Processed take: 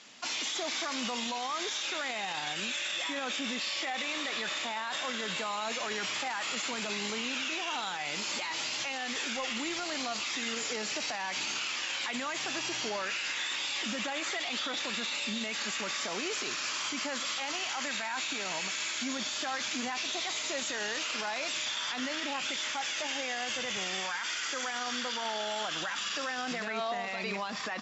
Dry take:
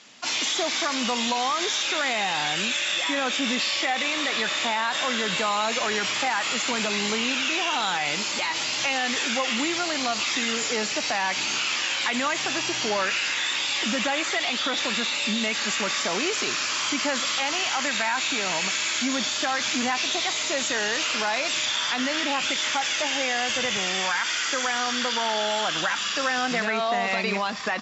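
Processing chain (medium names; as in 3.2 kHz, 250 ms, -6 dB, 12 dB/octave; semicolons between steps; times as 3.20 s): bass shelf 88 Hz -5.5 dB; 9.34–9.80 s: added noise brown -58 dBFS; peak limiter -22.5 dBFS, peak gain reduction 10.5 dB; trim -3 dB; Opus 192 kbps 48 kHz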